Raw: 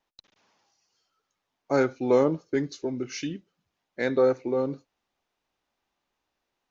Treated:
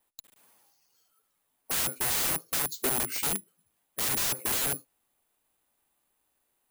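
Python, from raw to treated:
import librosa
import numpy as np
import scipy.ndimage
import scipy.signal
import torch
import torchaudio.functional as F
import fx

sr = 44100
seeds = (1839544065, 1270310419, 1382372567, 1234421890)

y = (np.kron(scipy.signal.resample_poly(x, 1, 4), np.eye(4)[0]) * 4)[:len(x)]
y = fx.spec_box(y, sr, start_s=2.66, length_s=0.25, low_hz=230.0, high_hz=3000.0, gain_db=-13)
y = (np.mod(10.0 ** (17.0 / 20.0) * y + 1.0, 2.0) - 1.0) / 10.0 ** (17.0 / 20.0)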